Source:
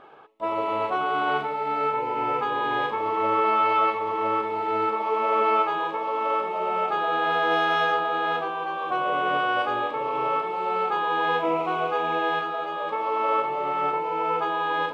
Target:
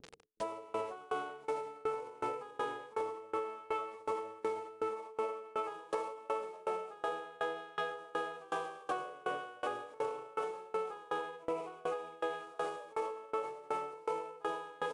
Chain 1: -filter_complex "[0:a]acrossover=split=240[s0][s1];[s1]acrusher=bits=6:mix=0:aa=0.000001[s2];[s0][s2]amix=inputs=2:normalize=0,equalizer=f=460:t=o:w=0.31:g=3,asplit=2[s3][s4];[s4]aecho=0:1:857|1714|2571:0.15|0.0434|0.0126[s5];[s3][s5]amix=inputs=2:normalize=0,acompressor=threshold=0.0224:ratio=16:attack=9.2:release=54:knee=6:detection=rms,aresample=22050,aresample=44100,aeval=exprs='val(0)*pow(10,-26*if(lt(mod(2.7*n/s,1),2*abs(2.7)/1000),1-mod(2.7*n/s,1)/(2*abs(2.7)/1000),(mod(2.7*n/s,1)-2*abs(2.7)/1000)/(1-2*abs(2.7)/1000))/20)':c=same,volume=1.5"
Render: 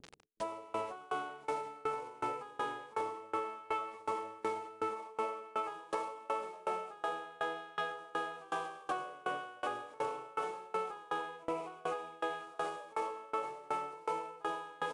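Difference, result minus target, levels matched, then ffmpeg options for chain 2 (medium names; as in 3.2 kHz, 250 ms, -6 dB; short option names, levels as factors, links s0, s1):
500 Hz band -2.5 dB
-filter_complex "[0:a]acrossover=split=240[s0][s1];[s1]acrusher=bits=6:mix=0:aa=0.000001[s2];[s0][s2]amix=inputs=2:normalize=0,equalizer=f=460:t=o:w=0.31:g=10.5,asplit=2[s3][s4];[s4]aecho=0:1:857|1714|2571:0.15|0.0434|0.0126[s5];[s3][s5]amix=inputs=2:normalize=0,acompressor=threshold=0.0224:ratio=16:attack=9.2:release=54:knee=6:detection=rms,aresample=22050,aresample=44100,aeval=exprs='val(0)*pow(10,-26*if(lt(mod(2.7*n/s,1),2*abs(2.7)/1000),1-mod(2.7*n/s,1)/(2*abs(2.7)/1000),(mod(2.7*n/s,1)-2*abs(2.7)/1000)/(1-2*abs(2.7)/1000))/20)':c=same,volume=1.5"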